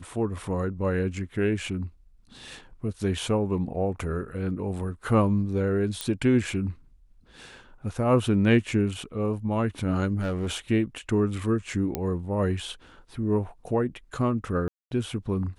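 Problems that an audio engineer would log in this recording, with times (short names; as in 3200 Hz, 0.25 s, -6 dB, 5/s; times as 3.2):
6.01 pop -13 dBFS
10.18–10.57 clipped -24 dBFS
11.95 pop -13 dBFS
14.68–14.91 gap 0.232 s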